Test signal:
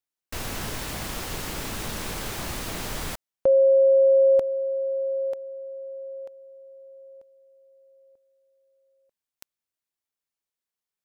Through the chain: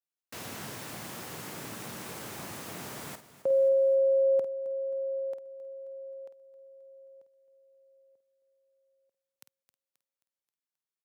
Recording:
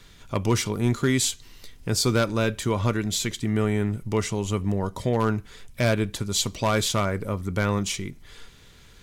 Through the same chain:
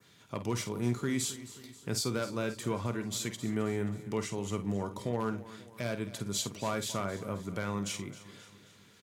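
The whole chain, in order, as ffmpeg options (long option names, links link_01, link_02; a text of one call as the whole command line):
ffmpeg -i in.wav -filter_complex "[0:a]highpass=frequency=110:width=0.5412,highpass=frequency=110:width=1.3066,adynamicequalizer=threshold=0.00631:dfrequency=3700:dqfactor=0.94:tfrequency=3700:tqfactor=0.94:attack=5:release=100:ratio=0.375:range=2:mode=cutabove:tftype=bell,alimiter=limit=-14dB:level=0:latency=1:release=290,asplit=2[link_01][link_02];[link_02]adelay=50,volume=-10.5dB[link_03];[link_01][link_03]amix=inputs=2:normalize=0,aecho=1:1:266|532|798|1064|1330:0.158|0.0824|0.0429|0.0223|0.0116,volume=-7.5dB" out.wav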